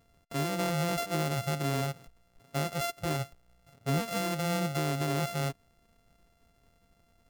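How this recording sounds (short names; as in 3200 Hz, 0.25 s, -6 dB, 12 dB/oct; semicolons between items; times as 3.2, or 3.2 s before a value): a buzz of ramps at a fixed pitch in blocks of 64 samples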